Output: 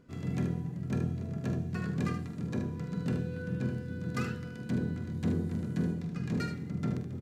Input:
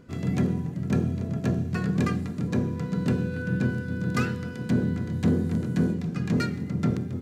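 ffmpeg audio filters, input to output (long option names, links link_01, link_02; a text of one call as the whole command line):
ffmpeg -i in.wav -af "aecho=1:1:46|76:0.299|0.398,volume=-8.5dB" out.wav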